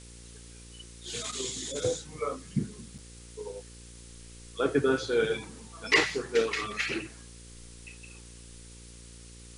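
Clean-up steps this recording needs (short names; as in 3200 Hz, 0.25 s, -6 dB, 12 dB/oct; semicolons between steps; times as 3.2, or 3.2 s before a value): de-hum 58.4 Hz, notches 9; interpolate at 2.98, 5.6 ms; denoiser 27 dB, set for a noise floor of -49 dBFS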